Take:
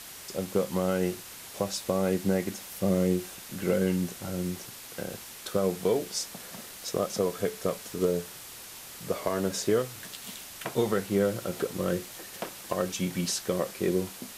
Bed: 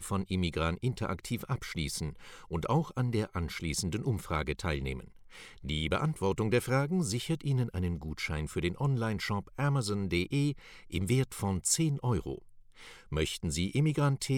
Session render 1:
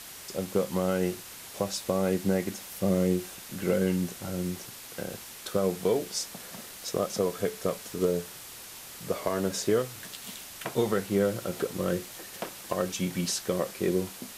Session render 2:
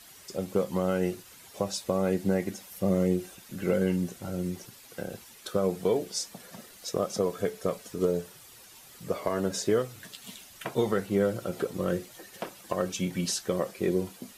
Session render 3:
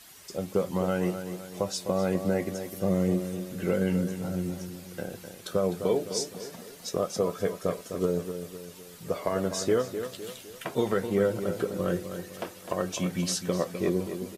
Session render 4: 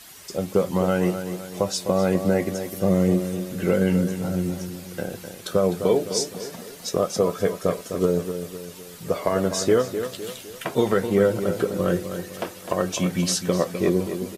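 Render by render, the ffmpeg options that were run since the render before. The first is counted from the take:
-af anull
-af "afftdn=nr=10:nf=-45"
-filter_complex "[0:a]asplit=2[s0][s1];[s1]adelay=12,volume=0.266[s2];[s0][s2]amix=inputs=2:normalize=0,asplit=2[s3][s4];[s4]adelay=255,lowpass=f=3300:p=1,volume=0.355,asplit=2[s5][s6];[s6]adelay=255,lowpass=f=3300:p=1,volume=0.46,asplit=2[s7][s8];[s8]adelay=255,lowpass=f=3300:p=1,volume=0.46,asplit=2[s9][s10];[s10]adelay=255,lowpass=f=3300:p=1,volume=0.46,asplit=2[s11][s12];[s12]adelay=255,lowpass=f=3300:p=1,volume=0.46[s13];[s5][s7][s9][s11][s13]amix=inputs=5:normalize=0[s14];[s3][s14]amix=inputs=2:normalize=0"
-af "volume=2"

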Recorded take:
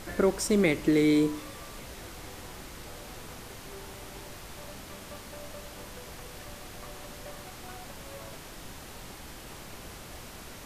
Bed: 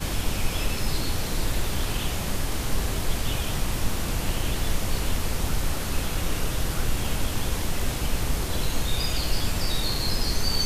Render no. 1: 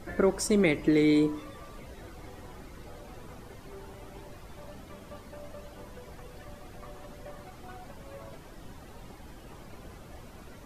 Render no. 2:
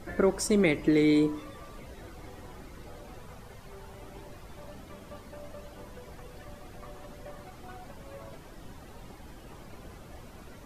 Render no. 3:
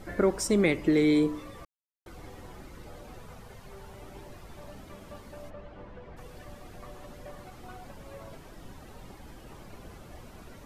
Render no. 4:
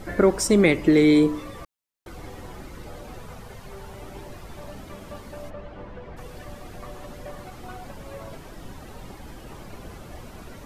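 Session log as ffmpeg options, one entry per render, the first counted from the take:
-af "afftdn=nr=12:nf=-45"
-filter_complex "[0:a]asettb=1/sr,asplit=3[s0][s1][s2];[s0]atrim=end=3.184[s3];[s1]atrim=start=3.18:end=3.94,asetpts=PTS-STARTPTS,afade=t=in:d=0.004:c=qsin,afade=t=out:st=0.756:d=0.004:c=qsin,equalizer=f=310:w=4.4:g=-15[s4];[s2]atrim=start=3.936[s5];[s3][s4]acrossfade=d=0.004:c1=hsin:c2=qsin[s6];[s6][s5]acrossfade=d=0.004:c1=qsin:c2=hsin"
-filter_complex "[0:a]asplit=3[s0][s1][s2];[s0]afade=t=out:st=5.49:d=0.02[s3];[s1]lowpass=2500,afade=t=in:st=5.49:d=0.02,afade=t=out:st=6.16:d=0.02[s4];[s2]afade=t=in:st=6.16:d=0.02[s5];[s3][s4][s5]amix=inputs=3:normalize=0,asplit=3[s6][s7][s8];[s6]atrim=end=1.65,asetpts=PTS-STARTPTS,afade=t=out:st=1.646:d=0.004:c=hsin[s9];[s7]atrim=start=1.65:end=2.06,asetpts=PTS-STARTPTS,volume=0[s10];[s8]atrim=start=2.06,asetpts=PTS-STARTPTS,afade=t=in:d=0.004:c=hsin[s11];[s9][s10][s11]concat=n=3:v=0:a=1"
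-af "volume=2.11"

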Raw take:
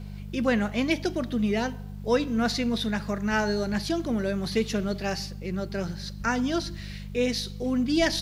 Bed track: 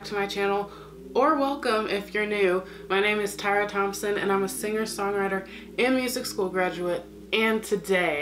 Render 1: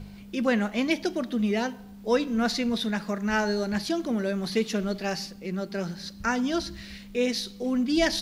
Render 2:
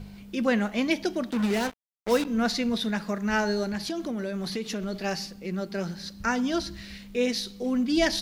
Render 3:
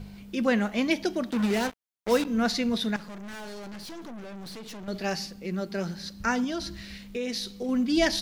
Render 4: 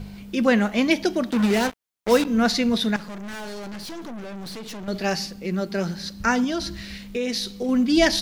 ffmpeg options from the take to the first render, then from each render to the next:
-af "bandreject=f=50:t=h:w=4,bandreject=f=100:t=h:w=4,bandreject=f=150:t=h:w=4"
-filter_complex "[0:a]asplit=3[s0][s1][s2];[s0]afade=t=out:st=1.3:d=0.02[s3];[s1]acrusher=bits=4:mix=0:aa=0.5,afade=t=in:st=1.3:d=0.02,afade=t=out:st=2.24:d=0.02[s4];[s2]afade=t=in:st=2.24:d=0.02[s5];[s3][s4][s5]amix=inputs=3:normalize=0,asplit=3[s6][s7][s8];[s6]afade=t=out:st=3.68:d=0.02[s9];[s7]acompressor=threshold=0.0447:ratio=6:attack=3.2:release=140:knee=1:detection=peak,afade=t=in:st=3.68:d=0.02,afade=t=out:st=4.92:d=0.02[s10];[s8]afade=t=in:st=4.92:d=0.02[s11];[s9][s10][s11]amix=inputs=3:normalize=0"
-filter_complex "[0:a]asettb=1/sr,asplit=3[s0][s1][s2];[s0]atrim=end=2.964[s3];[s1]atrim=start=2.96:end=4.88,asetpts=PTS-STARTPTS,afade=t=in:d=0.004:c=qsin,afade=t=out:st=1.916:d=0.004:c=qsin,aeval=exprs='(tanh(89.1*val(0)+0.5)-tanh(0.5))/89.1':c=same[s4];[s2]atrim=start=4.876[s5];[s3][s4]acrossfade=d=0.004:c1=hsin:c2=qsin[s6];[s6][s5]acrossfade=d=0.004:c1=qsin:c2=hsin,asettb=1/sr,asplit=3[s7][s8][s9];[s7]atrim=end=6.444[s10];[s8]atrim=start=6.44:end=7.69,asetpts=PTS-STARTPTS,afade=t=in:d=0.004:c=qsin,afade=t=out:st=1.246:d=0.004:c=qsin,acompressor=threshold=0.0447:ratio=6:attack=3.2:release=140:knee=1:detection=peak[s11];[s9]atrim=start=7.686[s12];[s10][s11]acrossfade=d=0.004:c1=hsin:c2=qsin[s13];[s13][s12]acrossfade=d=0.004:c1=qsin:c2=hsin"
-af "volume=1.88"

